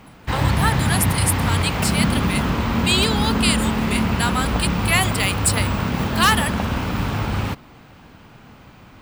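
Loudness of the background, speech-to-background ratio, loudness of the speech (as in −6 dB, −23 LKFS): −21.5 LKFS, −1.0 dB, −22.5 LKFS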